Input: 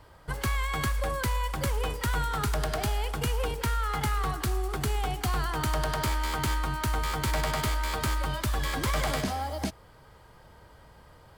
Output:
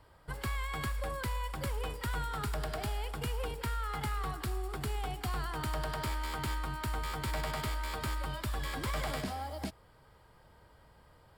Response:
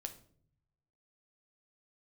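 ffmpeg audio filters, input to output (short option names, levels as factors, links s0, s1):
-filter_complex "[0:a]bandreject=f=6200:w=6.9,acrossover=split=5100[s0][s1];[s1]asoftclip=type=tanh:threshold=0.0237[s2];[s0][s2]amix=inputs=2:normalize=0,volume=0.447"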